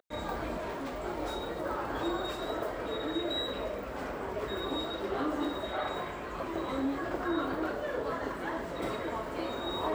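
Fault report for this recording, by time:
0.57–1.04 s: clipped -34 dBFS

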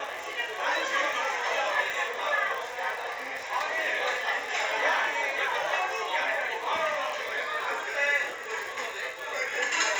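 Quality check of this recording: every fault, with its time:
crackle 120 per s -33 dBFS
1.90 s: pop

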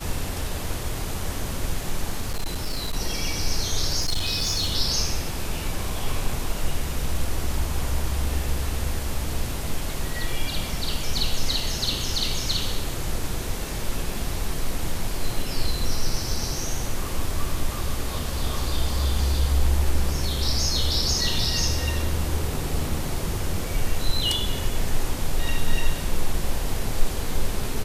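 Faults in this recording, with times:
2.20–2.97 s: clipped -21.5 dBFS
4.00–4.74 s: clipped -19.5 dBFS

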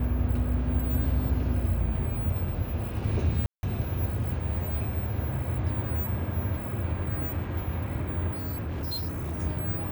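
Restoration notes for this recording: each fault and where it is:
3.46–3.63 s: dropout 171 ms
8.34–9.40 s: clipped -28.5 dBFS

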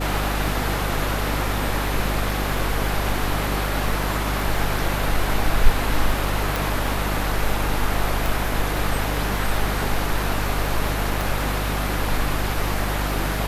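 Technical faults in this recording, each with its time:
crackle 14 per s -26 dBFS
hum 50 Hz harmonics 6 -26 dBFS
6.56 s: pop
8.26 s: pop
11.21 s: pop

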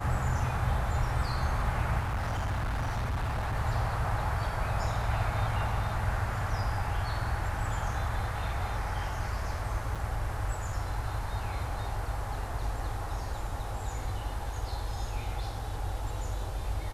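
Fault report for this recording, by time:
1.99–3.56 s: clipped -28 dBFS
9.95–9.96 s: dropout 6 ms

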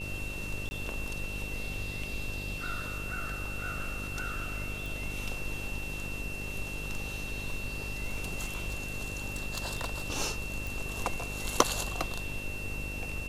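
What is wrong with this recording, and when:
buzz 50 Hz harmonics 12 -41 dBFS
whine 2.7 kHz -39 dBFS
0.69–0.71 s: dropout 20 ms
4.86 s: pop
6.72–10.02 s: clipped -27.5 dBFS
10.67 s: pop

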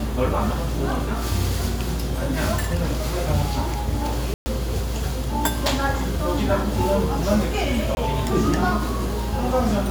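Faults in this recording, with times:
4.34–4.46 s: dropout 120 ms
7.95–7.97 s: dropout 21 ms

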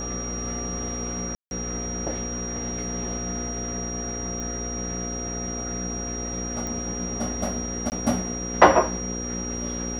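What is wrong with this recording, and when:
buzz 60 Hz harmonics 9 -33 dBFS
whine 5.7 kHz -32 dBFS
1.35–1.51 s: dropout 161 ms
4.40 s: pop -21 dBFS
6.67 s: pop -18 dBFS
7.90–7.92 s: dropout 19 ms

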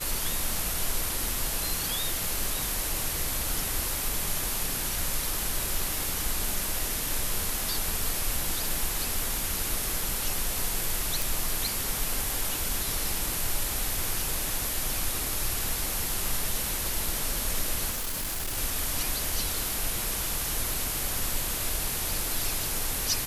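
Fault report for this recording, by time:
11.22 s: pop
17.90–18.58 s: clipped -28 dBFS

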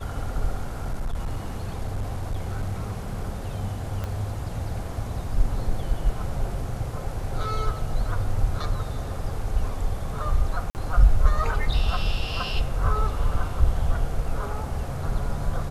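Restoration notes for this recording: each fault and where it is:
0.61–3.30 s: clipped -23 dBFS
4.04 s: pop -18 dBFS
10.70–10.75 s: dropout 49 ms

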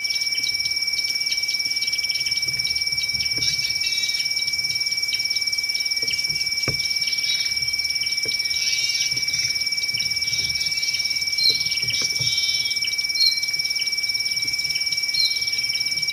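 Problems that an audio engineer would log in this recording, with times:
whine 2.3 kHz -27 dBFS

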